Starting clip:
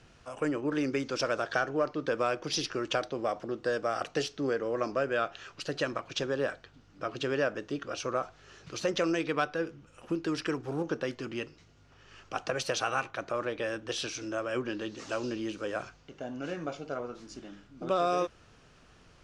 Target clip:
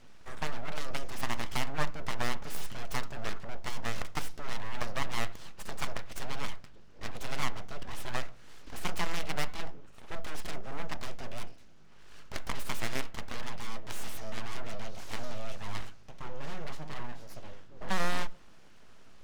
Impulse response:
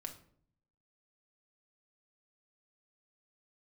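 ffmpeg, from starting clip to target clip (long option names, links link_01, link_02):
-filter_complex "[0:a]aeval=exprs='0.188*(cos(1*acos(clip(val(0)/0.188,-1,1)))-cos(1*PI/2))+0.075*(cos(7*acos(clip(val(0)/0.188,-1,1)))-cos(7*PI/2))':channel_layout=same,aeval=exprs='abs(val(0))':channel_layout=same,asplit=2[link_01][link_02];[link_02]aemphasis=mode=reproduction:type=riaa[link_03];[1:a]atrim=start_sample=2205,lowshelf=frequency=200:gain=-11[link_04];[link_03][link_04]afir=irnorm=-1:irlink=0,volume=-7.5dB[link_05];[link_01][link_05]amix=inputs=2:normalize=0,volume=-5.5dB"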